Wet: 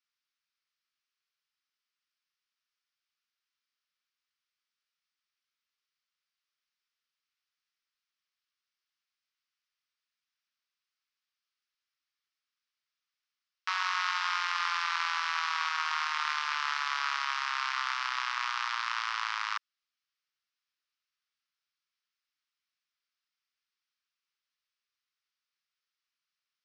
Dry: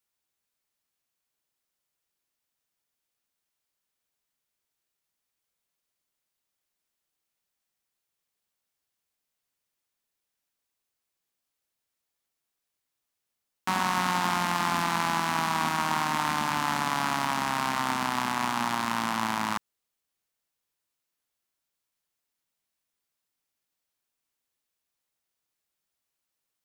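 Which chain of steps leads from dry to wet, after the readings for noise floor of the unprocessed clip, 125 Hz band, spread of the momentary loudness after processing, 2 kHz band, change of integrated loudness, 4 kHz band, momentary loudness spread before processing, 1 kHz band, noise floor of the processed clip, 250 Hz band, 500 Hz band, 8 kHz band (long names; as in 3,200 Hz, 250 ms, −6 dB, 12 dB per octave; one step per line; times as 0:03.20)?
−84 dBFS, below −40 dB, 3 LU, −0.5 dB, −3.5 dB, −0.5 dB, 2 LU, −6.0 dB, below −85 dBFS, below −40 dB, below −25 dB, −9.5 dB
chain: Chebyshev band-pass filter 1,200–5,400 Hz, order 3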